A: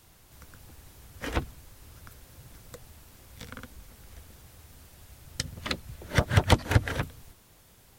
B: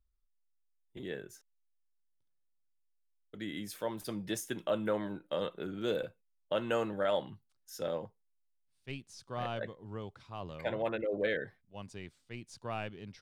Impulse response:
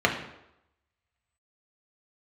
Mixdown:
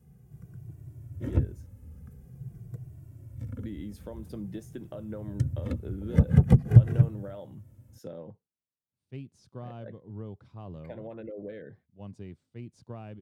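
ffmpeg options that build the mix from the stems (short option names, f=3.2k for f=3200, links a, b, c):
-filter_complex "[0:a]equalizer=f=125:t=o:w=1:g=11,equalizer=f=1k:t=o:w=1:g=-6,equalizer=f=4k:t=o:w=1:g=-12,asplit=2[a][b];[b]adelay=2,afreqshift=-0.47[c];[a][c]amix=inputs=2:normalize=1,volume=-3dB[d];[1:a]acompressor=threshold=-38dB:ratio=6,adelay=250,volume=-2dB[e];[d][e]amix=inputs=2:normalize=0,highpass=64,tiltshelf=f=630:g=9.5"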